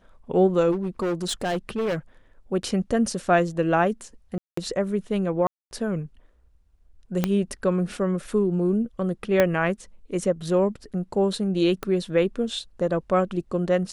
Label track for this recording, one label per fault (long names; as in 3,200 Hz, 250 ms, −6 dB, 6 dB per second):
0.710000	1.960000	clipping −22 dBFS
4.380000	4.570000	drop-out 194 ms
5.470000	5.710000	drop-out 241 ms
7.240000	7.240000	click −8 dBFS
9.400000	9.400000	click −6 dBFS
11.830000	11.830000	click −15 dBFS